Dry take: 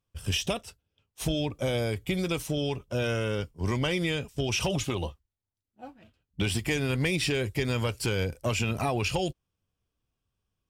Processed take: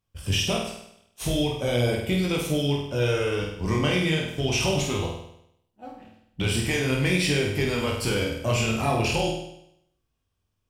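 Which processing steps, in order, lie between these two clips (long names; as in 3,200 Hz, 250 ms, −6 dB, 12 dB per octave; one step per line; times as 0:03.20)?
chorus effect 0.4 Hz, delay 20 ms, depth 7.2 ms
on a send: flutter between parallel walls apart 8.5 metres, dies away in 0.75 s
on the sum: level +5 dB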